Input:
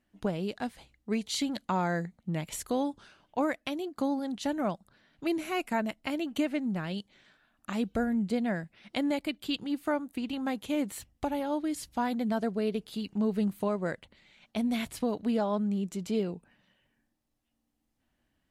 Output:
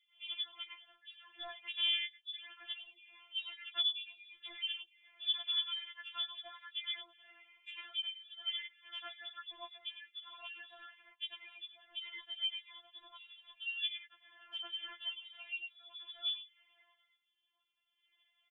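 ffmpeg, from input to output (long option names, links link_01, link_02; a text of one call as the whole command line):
ffmpeg -i in.wav -filter_complex "[0:a]highpass=frequency=100:width=0.5412,highpass=frequency=100:width=1.3066,acrossover=split=280 2300:gain=0.158 1 0.0891[link_01][link_02][link_03];[link_01][link_02][link_03]amix=inputs=3:normalize=0,volume=21dB,asoftclip=hard,volume=-21dB,lowpass=frequency=3200:width_type=q:width=0.5098,lowpass=frequency=3200:width_type=q:width=0.6013,lowpass=frequency=3200:width_type=q:width=0.9,lowpass=frequency=3200:width_type=q:width=2.563,afreqshift=-3800,acompressor=threshold=-54dB:ratio=2,acrossover=split=2400[link_04][link_05];[link_04]adelay=100[link_06];[link_06][link_05]amix=inputs=2:normalize=0,afftfilt=real='re*4*eq(mod(b,16),0)':imag='im*4*eq(mod(b,16),0)':win_size=2048:overlap=0.75,volume=11.5dB" out.wav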